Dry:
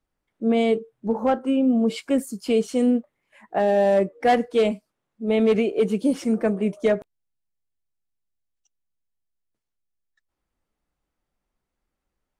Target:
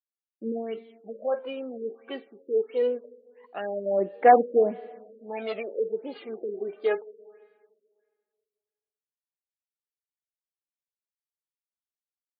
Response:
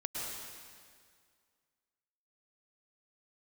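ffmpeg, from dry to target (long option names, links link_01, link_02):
-filter_complex "[0:a]agate=range=-33dB:threshold=-44dB:ratio=3:detection=peak,aphaser=in_gain=1:out_gain=1:delay=2.6:decay=0.76:speed=0.23:type=sinusoidal,highpass=410,asplit=2[link_01][link_02];[1:a]atrim=start_sample=2205,adelay=49[link_03];[link_02][link_03]afir=irnorm=-1:irlink=0,volume=-22.5dB[link_04];[link_01][link_04]amix=inputs=2:normalize=0,afftfilt=real='re*lt(b*sr/1024,570*pow(4900/570,0.5+0.5*sin(2*PI*1.5*pts/sr)))':imag='im*lt(b*sr/1024,570*pow(4900/570,0.5+0.5*sin(2*PI*1.5*pts/sr)))':win_size=1024:overlap=0.75,volume=-7.5dB"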